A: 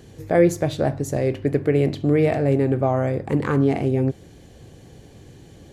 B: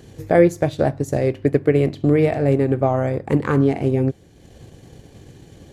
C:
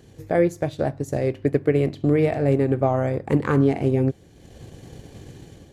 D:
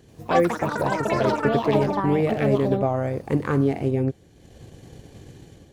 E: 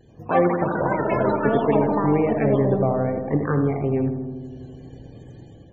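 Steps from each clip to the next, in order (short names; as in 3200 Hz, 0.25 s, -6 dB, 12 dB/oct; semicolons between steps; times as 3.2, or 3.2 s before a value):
transient shaper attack +3 dB, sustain -6 dB; gain +1.5 dB
AGC gain up to 8 dB; gain -6 dB
echoes that change speed 86 ms, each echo +7 st, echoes 3; gain -2.5 dB
darkening echo 81 ms, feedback 79%, low-pass 1600 Hz, level -7 dB; vibrato 0.61 Hz 25 cents; loudest bins only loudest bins 64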